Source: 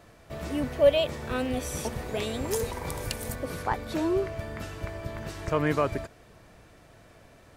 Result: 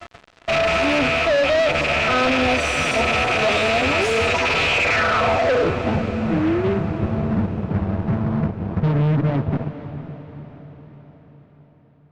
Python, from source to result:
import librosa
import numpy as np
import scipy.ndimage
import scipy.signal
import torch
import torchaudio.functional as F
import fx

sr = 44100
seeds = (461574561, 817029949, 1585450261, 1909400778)

y = fx.rattle_buzz(x, sr, strikes_db=-40.0, level_db=-17.0)
y = scipy.signal.sosfilt(scipy.signal.butter(4, 57.0, 'highpass', fs=sr, output='sos'), y)
y = fx.low_shelf(y, sr, hz=270.0, db=-5.5)
y = fx.hum_notches(y, sr, base_hz=60, count=9)
y = fx.rider(y, sr, range_db=3, speed_s=0.5)
y = fx.filter_sweep_lowpass(y, sr, from_hz=9200.0, to_hz=200.0, start_s=2.65, end_s=3.75, q=3.8)
y = fx.stretch_vocoder(y, sr, factor=1.6)
y = fx.small_body(y, sr, hz=(690.0, 1300.0), ring_ms=50, db=14)
y = fx.fuzz(y, sr, gain_db=36.0, gate_db=-43.0)
y = fx.air_absorb(y, sr, metres=160.0)
y = fx.echo_diffused(y, sr, ms=488, feedback_pct=53, wet_db=-12)
y = F.gain(torch.from_numpy(y), -2.0).numpy()